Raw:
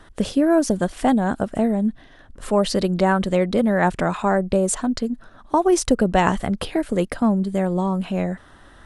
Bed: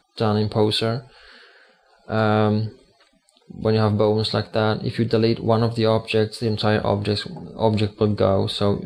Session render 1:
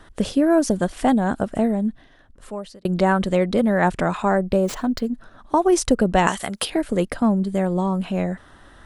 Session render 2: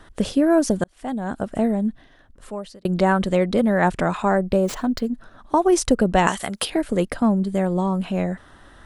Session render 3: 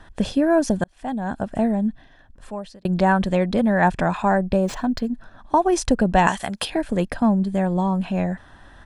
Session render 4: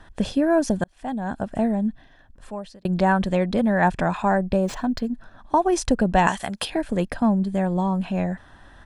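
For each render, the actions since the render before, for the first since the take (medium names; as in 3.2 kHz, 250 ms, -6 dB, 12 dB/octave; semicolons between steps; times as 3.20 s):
1.63–2.85 s: fade out; 4.47–5.11 s: median filter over 5 samples; 6.27–6.70 s: tilt EQ +3.5 dB/octave
0.84–1.68 s: fade in
treble shelf 9.6 kHz -11.5 dB; comb 1.2 ms, depth 35%
trim -1.5 dB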